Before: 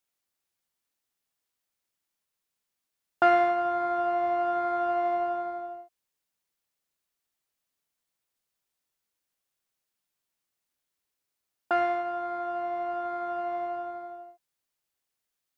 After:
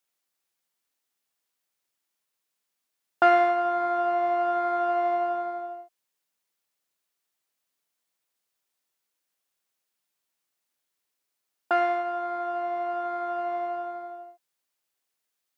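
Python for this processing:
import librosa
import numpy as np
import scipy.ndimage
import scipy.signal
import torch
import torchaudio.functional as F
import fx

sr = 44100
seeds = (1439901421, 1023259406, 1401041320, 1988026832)

y = fx.highpass(x, sr, hz=240.0, slope=6)
y = y * librosa.db_to_amplitude(2.5)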